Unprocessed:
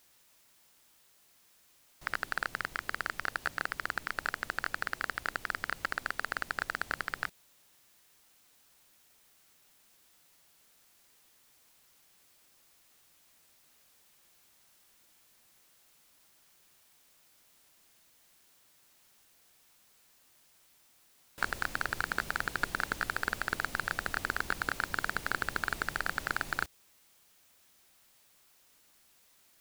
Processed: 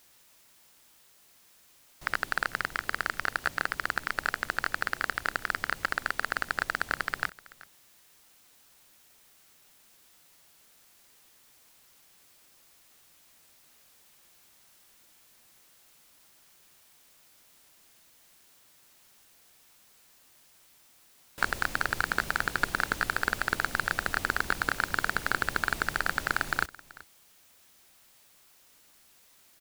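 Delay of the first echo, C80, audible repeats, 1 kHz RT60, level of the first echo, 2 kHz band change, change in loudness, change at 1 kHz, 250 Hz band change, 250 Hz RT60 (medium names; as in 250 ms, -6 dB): 381 ms, no reverb, 1, no reverb, -21.0 dB, +4.5 dB, +4.5 dB, +4.5 dB, +4.5 dB, no reverb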